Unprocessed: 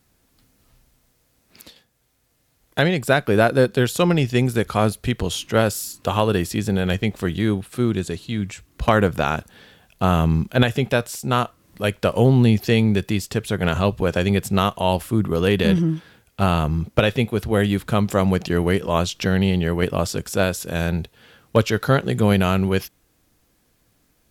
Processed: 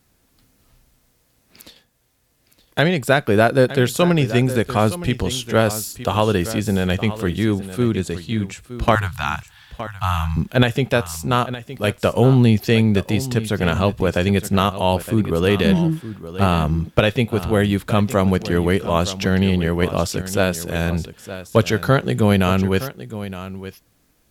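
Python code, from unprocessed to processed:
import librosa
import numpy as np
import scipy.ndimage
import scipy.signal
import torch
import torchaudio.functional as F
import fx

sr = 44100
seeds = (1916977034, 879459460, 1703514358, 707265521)

p1 = fx.cheby1_bandstop(x, sr, low_hz=130.0, high_hz=870.0, order=3, at=(8.95, 10.37))
p2 = p1 + fx.echo_single(p1, sr, ms=916, db=-13.5, dry=0)
y = p2 * 10.0 ** (1.5 / 20.0)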